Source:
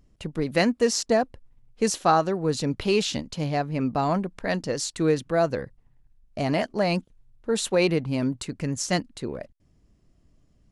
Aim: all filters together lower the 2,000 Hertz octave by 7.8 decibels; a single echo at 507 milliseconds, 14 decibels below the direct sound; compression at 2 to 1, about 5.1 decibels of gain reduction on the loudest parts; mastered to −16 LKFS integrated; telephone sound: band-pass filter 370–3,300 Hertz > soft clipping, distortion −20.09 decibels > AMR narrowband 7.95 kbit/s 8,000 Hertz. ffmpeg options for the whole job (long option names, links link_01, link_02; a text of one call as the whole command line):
ffmpeg -i in.wav -af "equalizer=frequency=2000:width_type=o:gain=-9,acompressor=threshold=-26dB:ratio=2,highpass=370,lowpass=3300,aecho=1:1:507:0.2,asoftclip=threshold=-20dB,volume=19dB" -ar 8000 -c:a libopencore_amrnb -b:a 7950 out.amr